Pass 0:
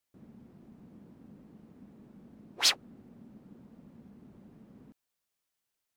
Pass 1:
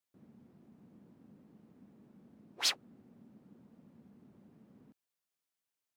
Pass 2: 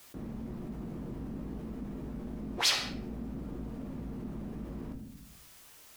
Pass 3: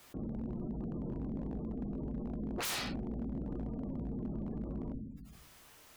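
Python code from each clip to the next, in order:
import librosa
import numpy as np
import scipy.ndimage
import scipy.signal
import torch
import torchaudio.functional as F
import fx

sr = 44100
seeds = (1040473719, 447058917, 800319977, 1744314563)

y1 = scipy.signal.sosfilt(scipy.signal.butter(2, 87.0, 'highpass', fs=sr, output='sos'), x)
y1 = F.gain(torch.from_numpy(y1), -6.0).numpy()
y2 = fx.octave_divider(y1, sr, octaves=2, level_db=-4.0)
y2 = fx.room_shoebox(y2, sr, seeds[0], volume_m3=57.0, walls='mixed', distance_m=0.44)
y2 = fx.env_flatten(y2, sr, amount_pct=50)
y2 = F.gain(torch.from_numpy(y2), 2.0).numpy()
y3 = fx.spec_gate(y2, sr, threshold_db=-25, keep='strong')
y3 = fx.high_shelf(y3, sr, hz=3200.0, db=-7.5)
y3 = 10.0 ** (-33.0 / 20.0) * (np.abs((y3 / 10.0 ** (-33.0 / 20.0) + 3.0) % 4.0 - 2.0) - 1.0)
y3 = F.gain(torch.from_numpy(y3), 1.5).numpy()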